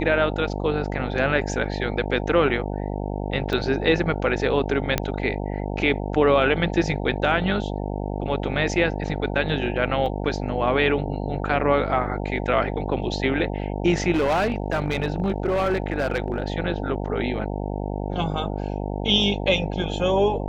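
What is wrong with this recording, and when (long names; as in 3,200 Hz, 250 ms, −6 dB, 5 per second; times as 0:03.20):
mains buzz 50 Hz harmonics 18 −28 dBFS
0:03.53: drop-out 2.2 ms
0:04.98: click −6 dBFS
0:10.06: drop-out 3.2 ms
0:14.14–0:16.54: clipping −17.5 dBFS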